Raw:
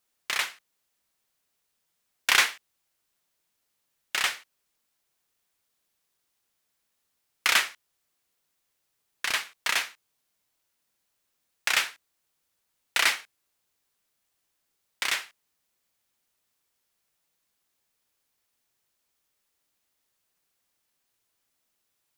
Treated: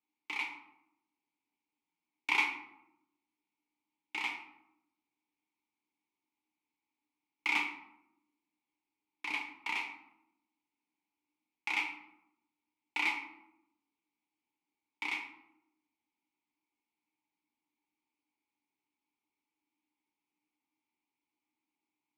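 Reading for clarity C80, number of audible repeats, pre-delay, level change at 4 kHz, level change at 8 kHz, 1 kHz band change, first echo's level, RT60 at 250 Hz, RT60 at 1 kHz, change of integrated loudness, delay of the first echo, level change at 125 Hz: 11.0 dB, none, 5 ms, -14.5 dB, -23.0 dB, -6.5 dB, none, 1.1 s, 0.85 s, -9.0 dB, none, n/a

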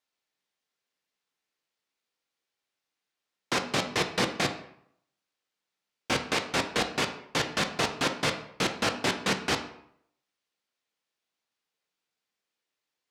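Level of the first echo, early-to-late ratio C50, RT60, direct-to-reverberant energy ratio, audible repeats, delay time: none, 9.5 dB, 0.70 s, 5.0 dB, none, none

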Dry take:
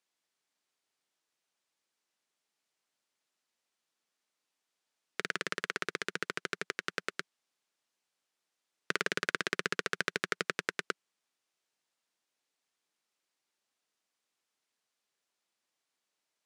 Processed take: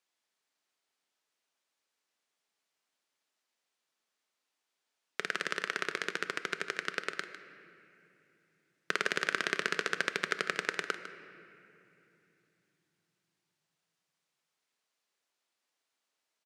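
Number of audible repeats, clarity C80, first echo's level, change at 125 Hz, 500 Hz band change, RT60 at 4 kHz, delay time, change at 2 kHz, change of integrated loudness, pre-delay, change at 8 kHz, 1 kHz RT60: 1, 9.5 dB, -13.0 dB, -3.0 dB, +1.0 dB, 1.9 s, 0.152 s, +2.0 dB, +1.5 dB, 5 ms, 0.0 dB, 2.7 s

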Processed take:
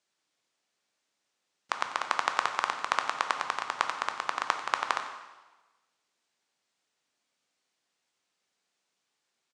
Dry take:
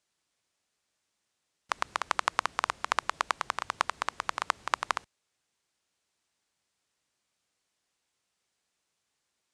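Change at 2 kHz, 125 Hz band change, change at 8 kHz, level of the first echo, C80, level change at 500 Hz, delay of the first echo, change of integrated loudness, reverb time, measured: +1.0 dB, n/a, -1.0 dB, -15.5 dB, 8.5 dB, +1.0 dB, 92 ms, +1.0 dB, 1.2 s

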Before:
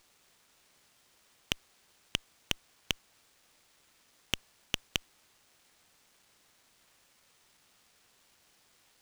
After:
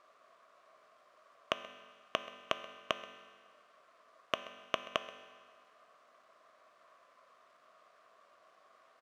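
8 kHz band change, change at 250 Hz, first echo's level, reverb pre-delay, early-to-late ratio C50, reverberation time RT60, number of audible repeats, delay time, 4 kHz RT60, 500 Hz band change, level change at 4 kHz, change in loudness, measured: -13.0 dB, -4.5 dB, -18.5 dB, 4 ms, 10.0 dB, 1.6 s, 1, 0.13 s, 1.6 s, +9.5 dB, -6.0 dB, -3.0 dB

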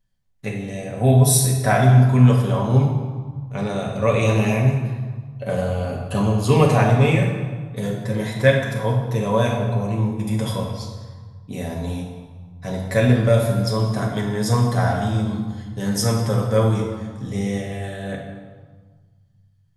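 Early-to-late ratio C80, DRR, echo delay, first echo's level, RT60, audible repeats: 5.0 dB, -2.5 dB, none, none, 1.5 s, none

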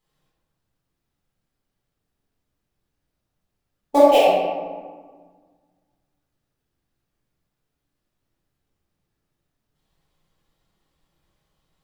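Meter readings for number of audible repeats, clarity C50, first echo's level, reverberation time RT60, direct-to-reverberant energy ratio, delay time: none, -2.0 dB, none, 1.6 s, -10.5 dB, none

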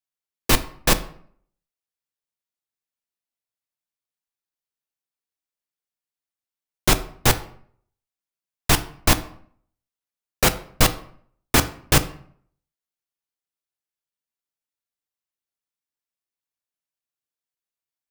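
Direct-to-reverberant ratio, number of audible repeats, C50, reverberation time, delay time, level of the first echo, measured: 10.0 dB, none, 15.0 dB, 0.55 s, none, none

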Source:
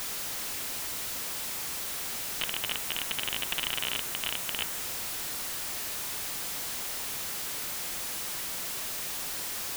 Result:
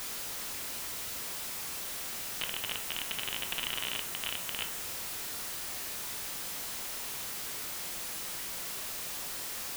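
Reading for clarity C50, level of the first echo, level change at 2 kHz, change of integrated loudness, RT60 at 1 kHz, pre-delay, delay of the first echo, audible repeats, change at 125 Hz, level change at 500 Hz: 13.0 dB, none, -3.0 dB, -3.5 dB, 0.45 s, 13 ms, none, none, -3.5 dB, -3.0 dB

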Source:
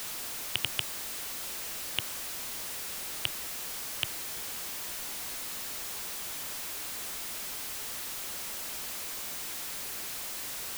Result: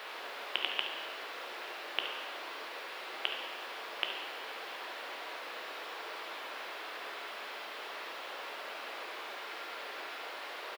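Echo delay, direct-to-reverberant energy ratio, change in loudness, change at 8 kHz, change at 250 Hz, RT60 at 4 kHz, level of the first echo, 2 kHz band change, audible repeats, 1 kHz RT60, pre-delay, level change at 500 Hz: 70 ms, 2.0 dB, -5.5 dB, -21.5 dB, -3.5 dB, 1.1 s, -10.5 dB, +2.0 dB, 1, 1.2 s, 3 ms, +5.0 dB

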